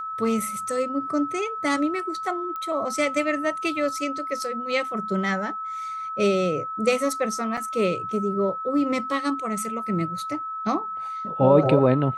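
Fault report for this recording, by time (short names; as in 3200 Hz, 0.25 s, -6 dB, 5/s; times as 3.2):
tone 1300 Hz -29 dBFS
2.56 pop -21 dBFS
7.57–7.58 gap 5.2 ms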